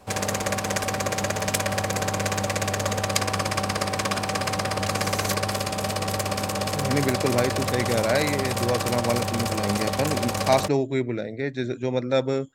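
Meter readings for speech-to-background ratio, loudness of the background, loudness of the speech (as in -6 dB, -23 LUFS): 0.0 dB, -26.0 LUFS, -26.0 LUFS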